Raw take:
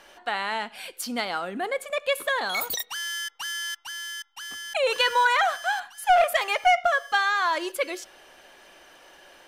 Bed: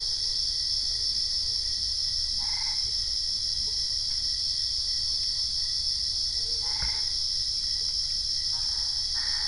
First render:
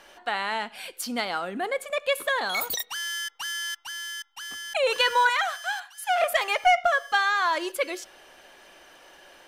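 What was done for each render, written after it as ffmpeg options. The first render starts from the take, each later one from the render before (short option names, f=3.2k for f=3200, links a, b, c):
-filter_complex "[0:a]asettb=1/sr,asplit=3[a][b][c];[a]atrim=end=5.294[d];[b]atrim=start=5.29:end=6.22,asetpts=PTS-STARTPTS,afade=t=in:d=0.004:c=qsin,afade=t=out:st=0.926:d=0.004:c=qsin,highpass=f=1.4k:p=1[e];[c]atrim=start=6.216[f];[d][e]acrossfade=d=0.004:c1=hsin:c2=qsin[g];[g][f]acrossfade=d=0.004:c1=qsin:c2=hsin"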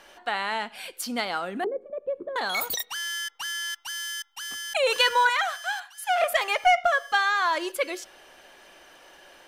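-filter_complex "[0:a]asettb=1/sr,asplit=3[a][b][c];[a]atrim=end=1.644[d];[b]atrim=start=1.64:end=2.36,asetpts=PTS-STARTPTS,afade=t=in:d=0.004:c=qsin,afade=t=out:st=0.716:d=0.004:c=qsin,lowpass=f=360:t=q:w=4.1[e];[c]atrim=start=2.356[f];[d][e]acrossfade=d=0.004:c1=hsin:c2=qsin[g];[g][f]acrossfade=d=0.004:c1=qsin:c2=hsin,asettb=1/sr,asplit=3[h][i][j];[h]atrim=end=3.754[k];[i]atrim=start=3.75:end=5.09,asetpts=PTS-STARTPTS,afade=t=in:d=0.004:c=qsin,afade=t=out:st=1.336:d=0.004:c=qsin,highshelf=f=3.9k:g=5[l];[j]atrim=start=5.086[m];[k][l]acrossfade=d=0.004:c1=hsin:c2=qsin[n];[n][m]acrossfade=d=0.004:c1=qsin:c2=hsin"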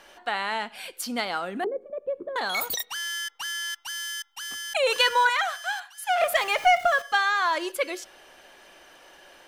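-filter_complex "[0:a]asettb=1/sr,asplit=3[a][b][c];[a]atrim=end=6.214[d];[b]atrim=start=6.21:end=7.02,asetpts=PTS-STARTPTS,afade=t=in:d=0.004:c=qsin,afade=t=out:st=0.806:d=0.004:c=qsin,aeval=exprs='val(0)+0.5*0.0141*sgn(val(0))':c=same[e];[c]atrim=start=7.016[f];[d][e]acrossfade=d=0.004:c1=hsin:c2=qsin[g];[g][f]acrossfade=d=0.004:c1=qsin:c2=hsin"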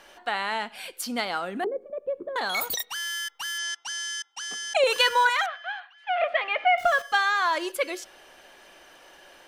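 -filter_complex "[0:a]asettb=1/sr,asplit=3[a][b][c];[a]atrim=end=3.584[d];[b]atrim=start=3.58:end=4.84,asetpts=PTS-STARTPTS,afade=t=in:d=0.004:c=qsin,afade=t=out:st=1.256:d=0.004:c=qsin,highpass=f=170:w=0.5412,highpass=f=170:w=1.3066,equalizer=f=180:t=q:w=4:g=9,equalizer=f=450:t=q:w=4:g=10,equalizer=f=730:t=q:w=4:g=6,equalizer=f=5.8k:t=q:w=4:g=5,lowpass=f=8.8k:w=0.5412,lowpass=f=8.8k:w=1.3066[e];[c]atrim=start=4.836[f];[d][e]acrossfade=d=0.004:c1=hsin:c2=qsin[g];[g][f]acrossfade=d=0.004:c1=qsin:c2=hsin,asettb=1/sr,asplit=3[h][i][j];[h]atrim=end=5.464[k];[i]atrim=start=5.46:end=6.78,asetpts=PTS-STARTPTS,afade=t=in:d=0.004:c=qsin,afade=t=out:st=1.316:d=0.004:c=qsin,highpass=f=270:w=0.5412,highpass=f=270:w=1.3066,equalizer=f=390:t=q:w=4:g=-9,equalizer=f=920:t=q:w=4:g=-8,equalizer=f=1.5k:t=q:w=4:g=-4,lowpass=f=2.9k:w=0.5412,lowpass=f=2.9k:w=1.3066[l];[j]atrim=start=6.776[m];[k][l]acrossfade=d=0.004:c1=hsin:c2=qsin[n];[n][m]acrossfade=d=0.004:c1=qsin:c2=hsin"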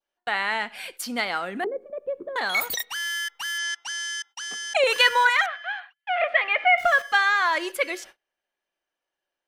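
-af "adynamicequalizer=threshold=0.01:dfrequency=2000:dqfactor=2:tfrequency=2000:tqfactor=2:attack=5:release=100:ratio=0.375:range=3.5:mode=boostabove:tftype=bell,agate=range=-35dB:threshold=-44dB:ratio=16:detection=peak"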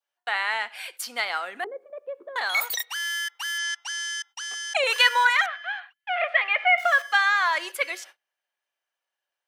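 -af "highpass=690"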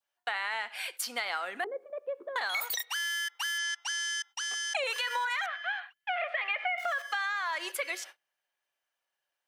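-af "alimiter=limit=-17dB:level=0:latency=1:release=35,acompressor=threshold=-29dB:ratio=6"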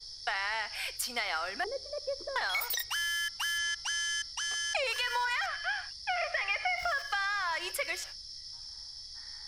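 -filter_complex "[1:a]volume=-17dB[a];[0:a][a]amix=inputs=2:normalize=0"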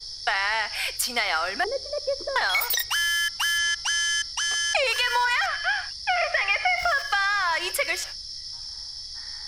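-af "volume=8.5dB"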